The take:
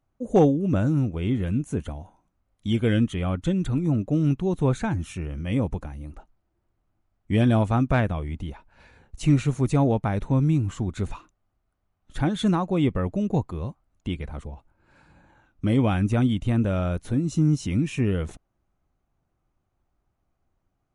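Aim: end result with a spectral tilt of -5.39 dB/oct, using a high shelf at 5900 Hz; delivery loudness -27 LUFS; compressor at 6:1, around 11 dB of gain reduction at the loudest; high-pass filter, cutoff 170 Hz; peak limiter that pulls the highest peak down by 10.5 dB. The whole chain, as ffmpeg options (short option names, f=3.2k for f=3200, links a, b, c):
-af "highpass=170,highshelf=f=5.9k:g=8.5,acompressor=threshold=-25dB:ratio=6,volume=9dB,alimiter=limit=-17dB:level=0:latency=1"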